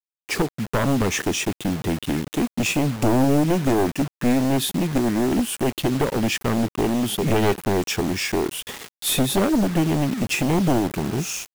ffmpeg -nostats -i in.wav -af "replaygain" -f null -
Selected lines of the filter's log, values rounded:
track_gain = +3.6 dB
track_peak = 0.304